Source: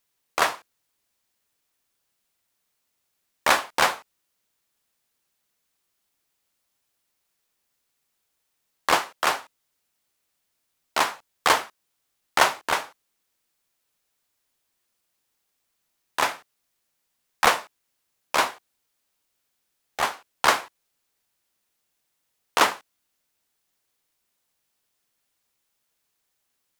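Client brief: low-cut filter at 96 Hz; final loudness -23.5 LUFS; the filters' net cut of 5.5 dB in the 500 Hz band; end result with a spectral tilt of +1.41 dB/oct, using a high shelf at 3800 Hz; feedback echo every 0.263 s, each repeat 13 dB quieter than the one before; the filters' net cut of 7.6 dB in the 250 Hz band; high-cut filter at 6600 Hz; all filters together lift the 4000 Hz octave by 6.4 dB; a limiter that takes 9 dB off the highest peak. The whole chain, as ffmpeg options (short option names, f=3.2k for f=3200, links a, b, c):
-af "highpass=96,lowpass=6.6k,equalizer=f=250:t=o:g=-8,equalizer=f=500:t=o:g=-6,highshelf=f=3.8k:g=7,equalizer=f=4k:t=o:g=4.5,alimiter=limit=-9dB:level=0:latency=1,aecho=1:1:263|526|789:0.224|0.0493|0.0108,volume=3dB"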